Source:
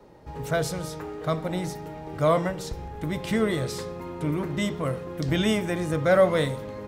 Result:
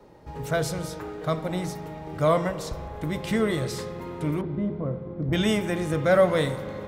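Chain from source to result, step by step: 4.41–5.33 Bessel low-pass 560 Hz, order 2; spring tank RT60 3.5 s, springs 39 ms, chirp 60 ms, DRR 13.5 dB

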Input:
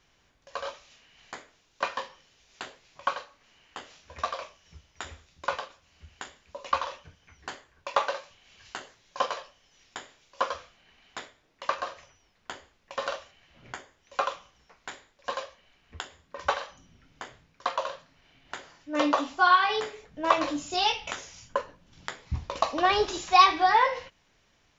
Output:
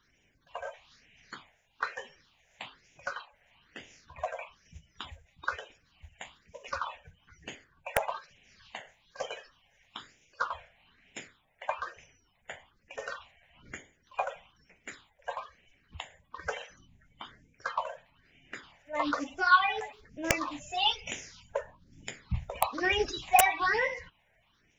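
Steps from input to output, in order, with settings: bin magnitudes rounded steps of 30 dB; wrapped overs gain 7.5 dB; phaser stages 6, 1.1 Hz, lowest notch 300–1200 Hz

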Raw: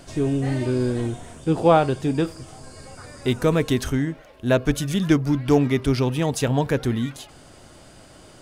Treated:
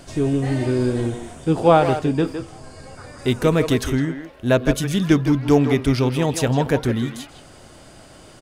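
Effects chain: 1.99–3.19 high shelf 5100 Hz -6.5 dB; speakerphone echo 0.16 s, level -7 dB; gain +2 dB

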